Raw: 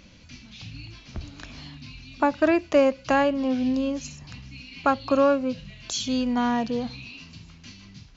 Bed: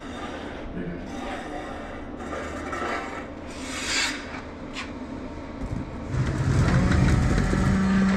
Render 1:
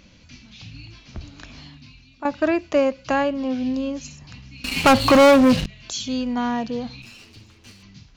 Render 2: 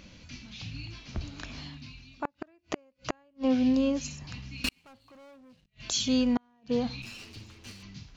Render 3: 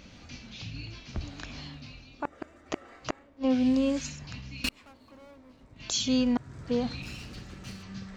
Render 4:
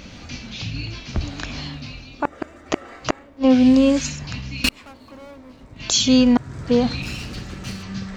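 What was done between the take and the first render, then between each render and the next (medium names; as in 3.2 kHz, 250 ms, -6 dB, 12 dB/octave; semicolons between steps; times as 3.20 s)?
1.56–2.25 s: fade out, to -13 dB; 4.64–5.66 s: waveshaping leveller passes 5; 7.02–7.83 s: comb filter that takes the minimum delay 9.2 ms
inverted gate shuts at -15 dBFS, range -41 dB
add bed -23.5 dB
trim +11 dB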